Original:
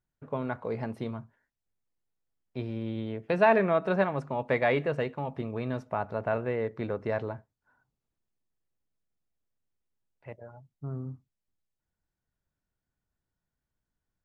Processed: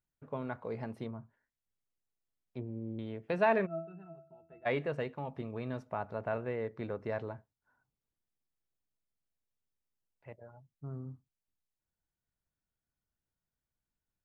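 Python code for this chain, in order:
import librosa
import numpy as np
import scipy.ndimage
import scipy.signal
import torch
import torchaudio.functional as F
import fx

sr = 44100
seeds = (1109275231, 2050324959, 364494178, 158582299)

y = fx.env_lowpass_down(x, sr, base_hz=550.0, full_db=-30.0, at=(1.05, 2.99))
y = fx.octave_resonator(y, sr, note='E', decay_s=0.34, at=(3.65, 4.65), fade=0.02)
y = y * librosa.db_to_amplitude(-6.0)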